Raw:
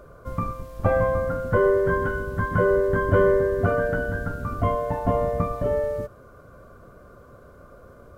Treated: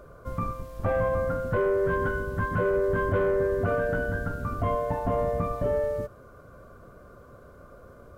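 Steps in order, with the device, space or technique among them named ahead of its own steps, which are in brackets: soft clipper into limiter (soft clip -11.5 dBFS, distortion -21 dB; limiter -16.5 dBFS, peak gain reduction 4.5 dB); gain -1.5 dB

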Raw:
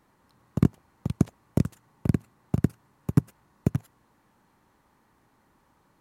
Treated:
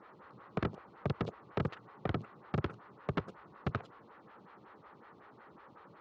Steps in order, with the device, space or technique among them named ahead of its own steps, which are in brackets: vibe pedal into a guitar amplifier (photocell phaser 5.4 Hz; tube stage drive 40 dB, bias 0.55; speaker cabinet 100–3900 Hz, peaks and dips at 260 Hz -6 dB, 450 Hz +4 dB, 900 Hz -3 dB, 1300 Hz +6 dB); gain +13.5 dB

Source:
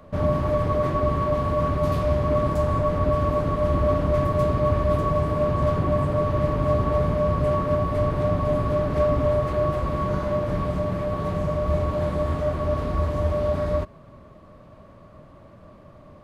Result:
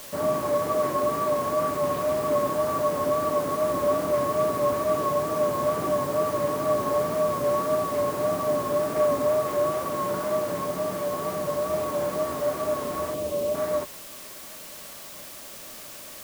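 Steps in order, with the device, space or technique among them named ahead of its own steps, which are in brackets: wax cylinder (BPF 290–2700 Hz; wow and flutter; white noise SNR 16 dB); 13.14–13.55 band shelf 1200 Hz -9 dB

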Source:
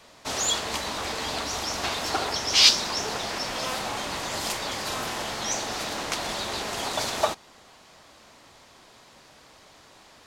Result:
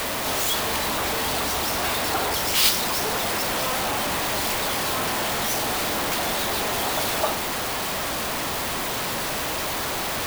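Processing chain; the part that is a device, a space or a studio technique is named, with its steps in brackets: 1.56–2.39 steep low-pass 6100 Hz 72 dB/oct; early CD player with a faulty converter (zero-crossing step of -16 dBFS; clock jitter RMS 0.037 ms); gain -5 dB

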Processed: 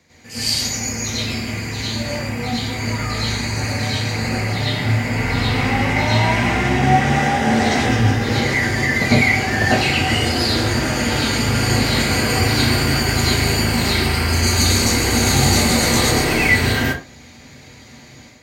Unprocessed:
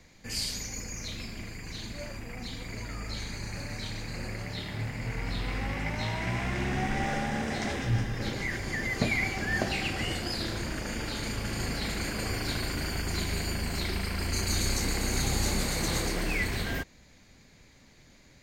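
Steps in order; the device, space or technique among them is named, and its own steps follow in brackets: far laptop microphone (reverb RT60 0.35 s, pre-delay 93 ms, DRR -8.5 dB; HPF 100 Hz 12 dB/oct; AGC gain up to 7.5 dB)

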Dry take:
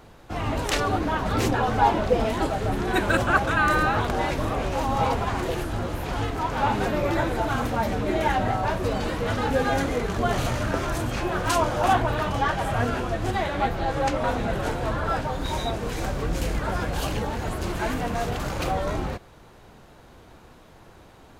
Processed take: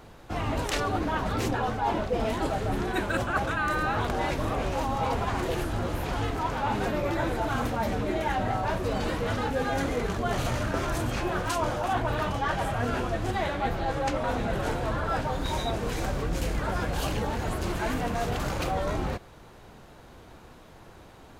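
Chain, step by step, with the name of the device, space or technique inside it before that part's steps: compression on the reversed sound (reverse; compressor 6:1, threshold -24 dBFS, peak gain reduction 10 dB; reverse)

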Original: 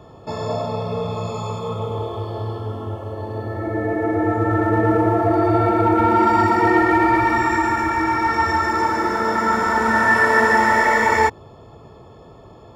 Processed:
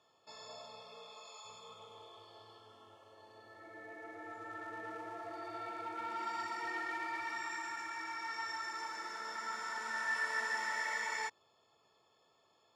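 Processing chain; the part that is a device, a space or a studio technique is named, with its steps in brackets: piezo pickup straight into a mixer (LPF 5900 Hz 12 dB/oct; differentiator); 0.82–1.44 HPF 140 Hz -> 530 Hz 12 dB/oct; gain -7 dB

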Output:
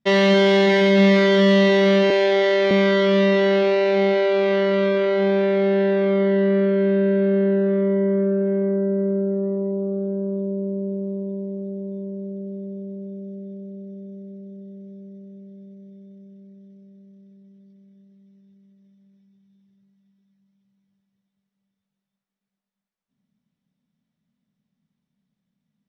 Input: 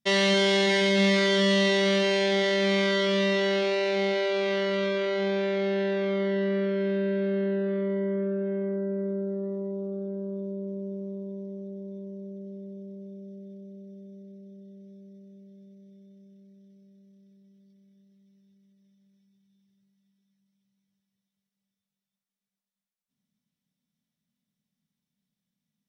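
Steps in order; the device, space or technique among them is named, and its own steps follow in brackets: 2.1–2.71 HPF 280 Hz 24 dB/oct; through cloth (LPF 6900 Hz 12 dB/oct; high shelf 2700 Hz -13 dB); gain +8.5 dB

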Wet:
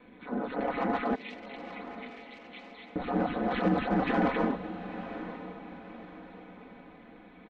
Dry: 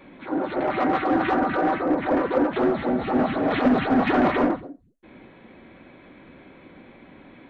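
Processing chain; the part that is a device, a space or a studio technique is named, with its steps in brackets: 1.15–2.96 elliptic high-pass 2100 Hz; ring-modulated robot voice (ring modulator 67 Hz; comb 4 ms, depth 69%); diffused feedback echo 0.922 s, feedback 43%, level -12 dB; gain -6 dB

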